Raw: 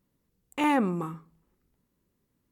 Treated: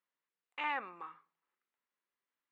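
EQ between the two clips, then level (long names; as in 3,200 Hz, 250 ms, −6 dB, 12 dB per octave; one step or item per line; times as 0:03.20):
high-pass filter 1,400 Hz 12 dB per octave
low-pass filter 7,800 Hz
high-frequency loss of the air 370 metres
0.0 dB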